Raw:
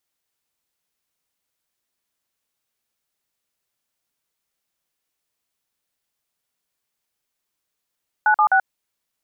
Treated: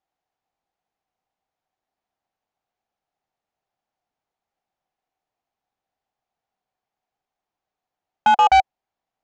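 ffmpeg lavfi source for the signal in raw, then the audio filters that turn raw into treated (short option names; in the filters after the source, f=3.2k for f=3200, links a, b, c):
-f lavfi -i "aevalsrc='0.178*clip(min(mod(t,0.128),0.083-mod(t,0.128))/0.002,0,1)*(eq(floor(t/0.128),0)*(sin(2*PI*852*mod(t,0.128))+sin(2*PI*1477*mod(t,0.128)))+eq(floor(t/0.128),1)*(sin(2*PI*852*mod(t,0.128))+sin(2*PI*1209*mod(t,0.128)))+eq(floor(t/0.128),2)*(sin(2*PI*770*mod(t,0.128))+sin(2*PI*1477*mod(t,0.128))))':d=0.384:s=44100"
-af "lowpass=f=1.3k:p=1,equalizer=f=760:t=o:w=0.41:g=14,aresample=16000,asoftclip=type=hard:threshold=-10.5dB,aresample=44100"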